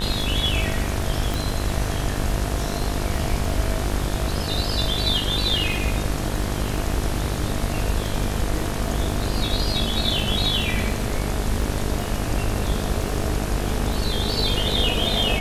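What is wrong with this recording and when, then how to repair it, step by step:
buzz 50 Hz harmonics 37 -27 dBFS
crackle 22 per s -29 dBFS
1.34 s: pop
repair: de-click; de-hum 50 Hz, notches 37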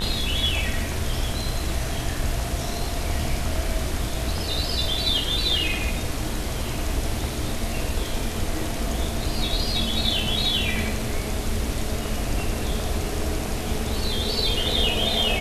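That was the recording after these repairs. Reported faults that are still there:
nothing left

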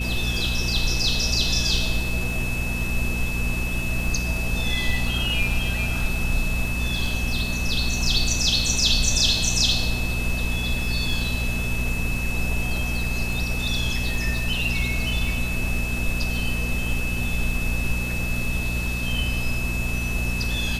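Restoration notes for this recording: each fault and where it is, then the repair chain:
crackle 24 per s -30 dBFS
hum 60 Hz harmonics 4 -28 dBFS
whine 2.6 kHz -29 dBFS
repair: de-click; band-stop 2.6 kHz, Q 30; de-hum 60 Hz, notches 4

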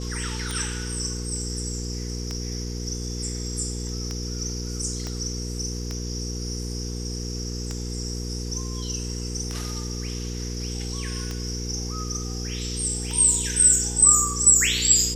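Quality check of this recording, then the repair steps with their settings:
hum 60 Hz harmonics 8 -31 dBFS
tick 33 1/3 rpm
5.07 s: pop -18 dBFS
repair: de-click; de-hum 60 Hz, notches 8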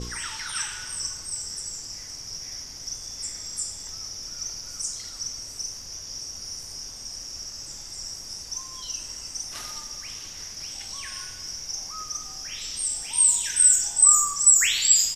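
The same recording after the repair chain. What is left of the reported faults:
5.07 s: pop

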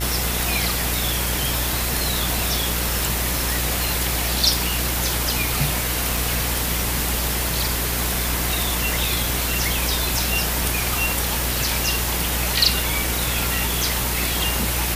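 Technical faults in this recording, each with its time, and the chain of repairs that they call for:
buzz 60 Hz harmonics 33 -27 dBFS
6.17 s: dropout 2.6 ms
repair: de-hum 60 Hz, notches 33; interpolate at 6.17 s, 2.6 ms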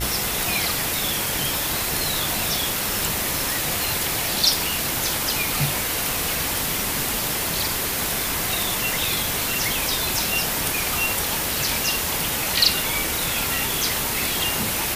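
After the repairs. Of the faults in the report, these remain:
nothing left

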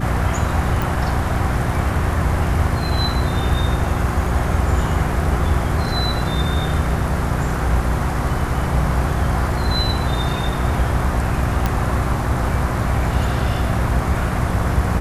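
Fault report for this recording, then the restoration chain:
hum 60 Hz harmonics 6 -23 dBFS
0.82 s: pop
11.66 s: pop -6 dBFS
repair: de-click; de-hum 60 Hz, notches 6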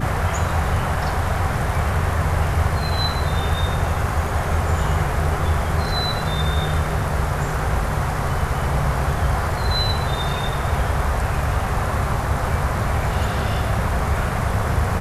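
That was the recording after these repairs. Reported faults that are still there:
nothing left

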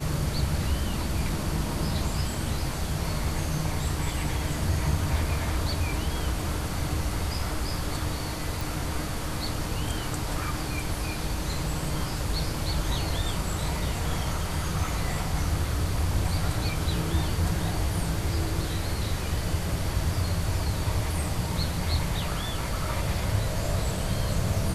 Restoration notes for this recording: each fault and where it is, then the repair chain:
8.61 s: pop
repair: de-click

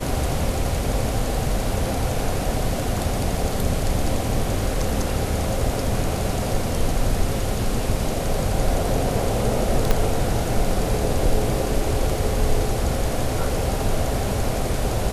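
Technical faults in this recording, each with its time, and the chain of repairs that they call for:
9.91 s: pop -5 dBFS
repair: de-click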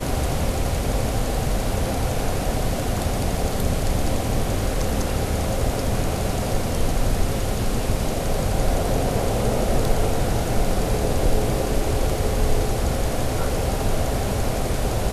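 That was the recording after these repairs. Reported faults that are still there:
9.91 s: pop

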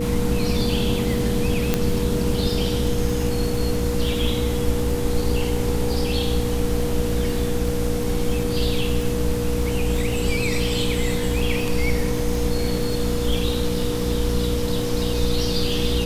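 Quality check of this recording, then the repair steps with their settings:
crackle 41 per s -28 dBFS
hum 60 Hz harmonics 5 -27 dBFS
whine 480 Hz -26 dBFS
1.74 s: pop -4 dBFS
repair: de-click; de-hum 60 Hz, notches 5; band-stop 480 Hz, Q 30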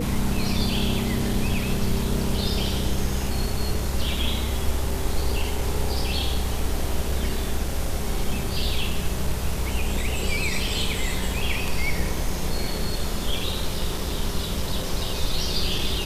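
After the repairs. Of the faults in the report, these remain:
nothing left

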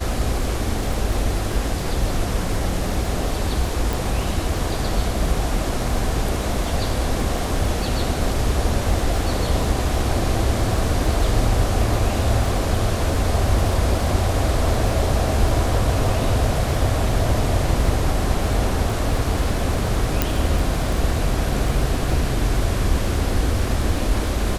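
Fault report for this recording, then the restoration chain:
crackle 32 per s -27 dBFS
3.93 s: pop
20.22 s: pop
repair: de-click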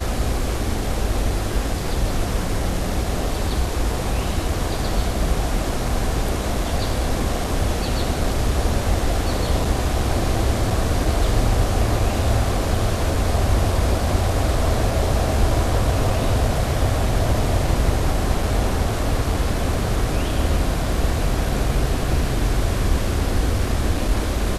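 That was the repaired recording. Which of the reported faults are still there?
nothing left

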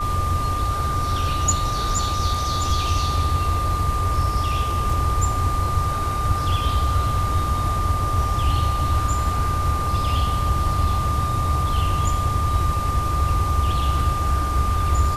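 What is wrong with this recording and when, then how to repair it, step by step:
whine 1.2 kHz -24 dBFS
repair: band-stop 1.2 kHz, Q 30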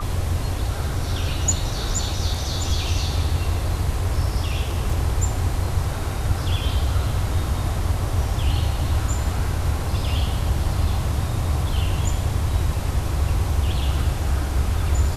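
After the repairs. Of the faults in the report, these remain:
nothing left

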